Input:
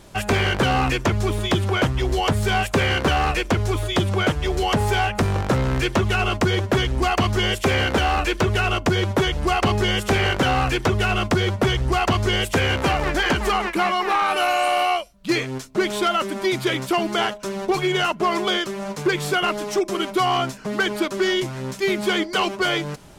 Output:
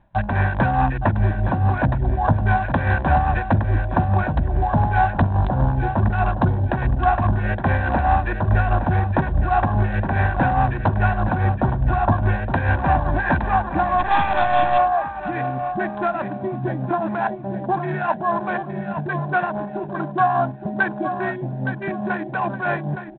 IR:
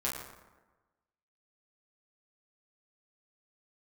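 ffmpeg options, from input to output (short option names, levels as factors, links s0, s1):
-filter_complex "[0:a]afwtdn=0.0631,lowpass=f=1700:w=0.5412,lowpass=f=1700:w=1.3066,acompressor=threshold=0.0562:ratio=1.5,tremolo=f=4.8:d=0.53,asettb=1/sr,asplit=3[s0][s1][s2];[s0]atrim=end=16.444[s3];[s1]atrim=start=16.44:end=17,asetpts=PTS-STARTPTS,afade=t=in:d=0.004:c=qsin,afade=t=out:st=0.556:d=0.004:c=qsin,equalizer=f=200:t=o:w=1.6:g=4[s4];[s2]atrim=start=16.996[s5];[s3][s4]acrossfade=d=0.004:c1=hsin:c2=qsin[s6];[s6][s5]acrossfade=d=0.004:c1=qsin:c2=hsin,aecho=1:1:866|1732|2598:0.355|0.103|0.0298,acontrast=21,asettb=1/sr,asplit=3[s7][s8][s9];[s7]atrim=end=8.414[s10];[s8]atrim=start=8.41:end=8.93,asetpts=PTS-STARTPTS,afade=t=in:d=0.004:c=qsin,afade=t=out:st=0.516:d=0.004:c=qsin,lowshelf=f=66:g=4[s11];[s9]atrim=start=8.926[s12];[s10][s11]acrossfade=d=0.004:c1=hsin:c2=qsin[s13];[s13][s12]acrossfade=d=0.004:c1=qsin:c2=hsin,asplit=3[s14][s15][s16];[s14]afade=t=out:st=13.98:d=0.02[s17];[s15]aeval=exprs='0.316*(cos(1*acos(clip(val(0)/0.316,-1,1)))-cos(1*PI/2))+0.00708*(cos(2*acos(clip(val(0)/0.316,-1,1)))-cos(2*PI/2))+0.01*(cos(4*acos(clip(val(0)/0.316,-1,1)))-cos(4*PI/2))+0.0447*(cos(6*acos(clip(val(0)/0.316,-1,1)))-cos(6*PI/2))':c=same,afade=t=in:st=13.98:d=0.02,afade=t=out:st=14.77:d=0.02[s18];[s16]afade=t=in:st=14.77:d=0.02[s19];[s17][s18][s19]amix=inputs=3:normalize=0,aecho=1:1:1.2:0.79,bandreject=f=67.36:t=h:w=4,bandreject=f=134.72:t=h:w=4,bandreject=f=202.08:t=h:w=4,bandreject=f=269.44:t=h:w=4,bandreject=f=336.8:t=h:w=4,bandreject=f=404.16:t=h:w=4,bandreject=f=471.52:t=h:w=4,bandreject=f=538.88:t=h:w=4" -ar 8000 -c:a adpcm_g726 -b:a 32k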